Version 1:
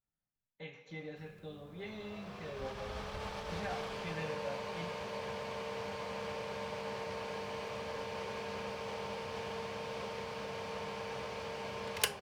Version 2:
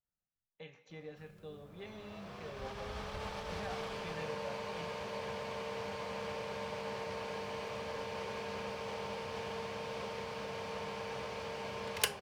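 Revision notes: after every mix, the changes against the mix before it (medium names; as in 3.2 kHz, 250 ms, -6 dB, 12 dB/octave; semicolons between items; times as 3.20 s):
speech: send -8.5 dB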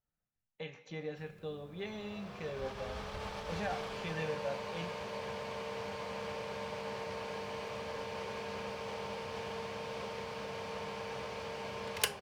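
speech +7.0 dB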